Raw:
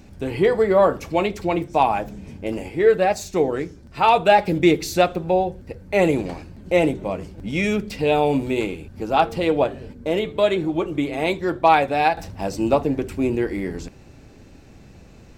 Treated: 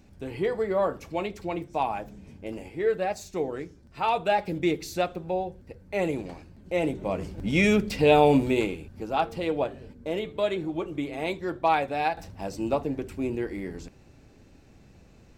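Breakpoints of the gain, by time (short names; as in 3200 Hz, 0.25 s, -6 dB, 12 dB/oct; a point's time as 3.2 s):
6.75 s -9.5 dB
7.28 s +0.5 dB
8.36 s +0.5 dB
9.13 s -8 dB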